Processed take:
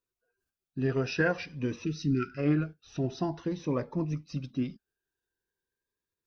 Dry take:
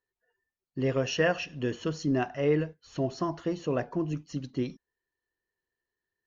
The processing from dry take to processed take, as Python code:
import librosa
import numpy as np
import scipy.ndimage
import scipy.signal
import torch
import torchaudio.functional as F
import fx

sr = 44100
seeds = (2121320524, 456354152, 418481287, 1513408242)

y = fx.dynamic_eq(x, sr, hz=1300.0, q=3.6, threshold_db=-52.0, ratio=4.0, max_db=6)
y = fx.formant_shift(y, sr, semitones=-2)
y = fx.spec_erase(y, sr, start_s=1.85, length_s=0.53, low_hz=460.0, high_hz=1300.0)
y = fx.notch_cascade(y, sr, direction='rising', hz=0.48)